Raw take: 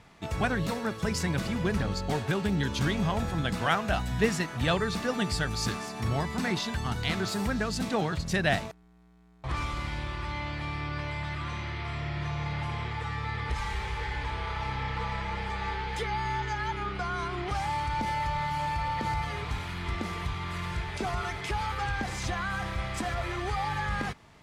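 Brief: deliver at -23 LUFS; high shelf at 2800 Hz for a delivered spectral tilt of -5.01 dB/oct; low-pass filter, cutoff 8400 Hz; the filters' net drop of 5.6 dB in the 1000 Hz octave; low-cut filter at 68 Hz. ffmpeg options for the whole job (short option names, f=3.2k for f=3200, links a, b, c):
-af "highpass=68,lowpass=8.4k,equalizer=f=1k:t=o:g=-6.5,highshelf=f=2.8k:g=-5,volume=10.5dB"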